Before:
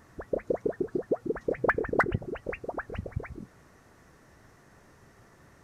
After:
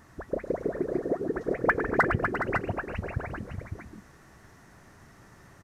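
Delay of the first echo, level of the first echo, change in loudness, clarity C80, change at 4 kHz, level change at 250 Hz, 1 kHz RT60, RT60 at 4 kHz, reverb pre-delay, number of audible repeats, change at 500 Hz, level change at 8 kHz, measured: 0.106 s, -12.5 dB, +2.0 dB, none, +4.0 dB, +3.0 dB, none, none, none, 5, +0.5 dB, n/a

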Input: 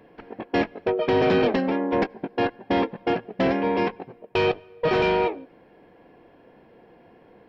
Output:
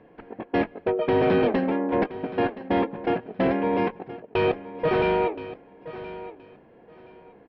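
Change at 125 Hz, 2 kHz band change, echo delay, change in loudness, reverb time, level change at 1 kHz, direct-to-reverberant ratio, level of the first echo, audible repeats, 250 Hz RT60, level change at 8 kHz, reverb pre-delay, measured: 0.0 dB, -2.5 dB, 1.022 s, -1.0 dB, none, -1.0 dB, none, -15.0 dB, 2, none, n/a, none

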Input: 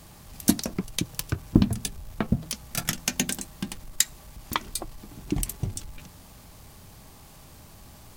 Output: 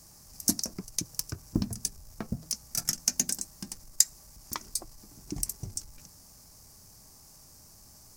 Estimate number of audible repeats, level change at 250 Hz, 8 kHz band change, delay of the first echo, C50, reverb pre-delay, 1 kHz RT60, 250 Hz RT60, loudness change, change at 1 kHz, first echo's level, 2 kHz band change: none, -10.0 dB, +1.5 dB, none, none, none, none, none, -2.5 dB, -10.5 dB, none, -12.0 dB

